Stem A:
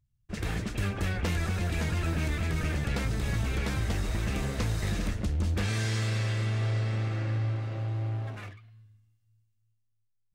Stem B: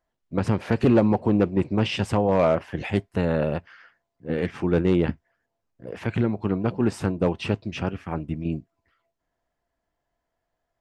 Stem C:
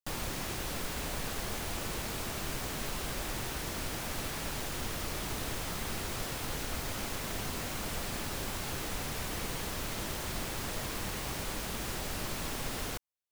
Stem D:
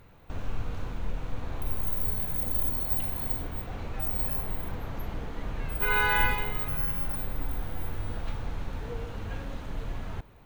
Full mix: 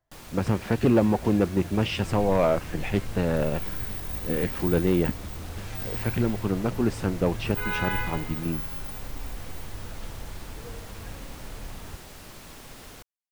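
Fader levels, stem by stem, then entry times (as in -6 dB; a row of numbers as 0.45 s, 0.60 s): -11.0 dB, -2.0 dB, -8.0 dB, -5.0 dB; 0.00 s, 0.00 s, 0.05 s, 1.75 s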